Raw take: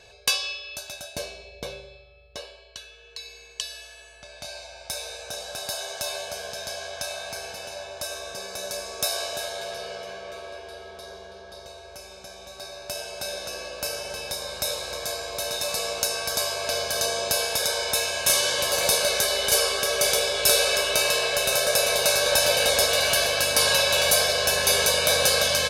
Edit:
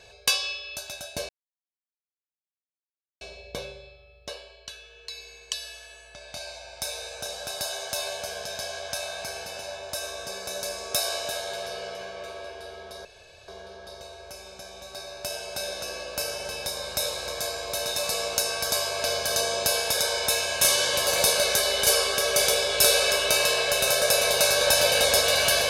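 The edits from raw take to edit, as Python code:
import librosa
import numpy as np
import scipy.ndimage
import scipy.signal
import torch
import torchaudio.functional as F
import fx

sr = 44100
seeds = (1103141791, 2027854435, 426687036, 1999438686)

y = fx.edit(x, sr, fx.insert_silence(at_s=1.29, length_s=1.92),
    fx.insert_room_tone(at_s=11.13, length_s=0.43), tone=tone)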